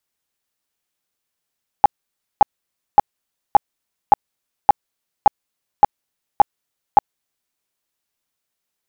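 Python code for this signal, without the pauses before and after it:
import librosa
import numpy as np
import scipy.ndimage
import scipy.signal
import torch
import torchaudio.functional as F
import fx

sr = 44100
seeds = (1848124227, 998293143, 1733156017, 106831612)

y = fx.tone_burst(sr, hz=824.0, cycles=14, every_s=0.57, bursts=10, level_db=-3.5)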